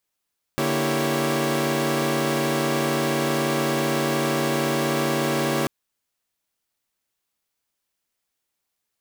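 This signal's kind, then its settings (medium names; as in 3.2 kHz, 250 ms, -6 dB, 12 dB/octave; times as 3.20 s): chord D3/A#3/E4/G4/C#5 saw, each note -25 dBFS 5.09 s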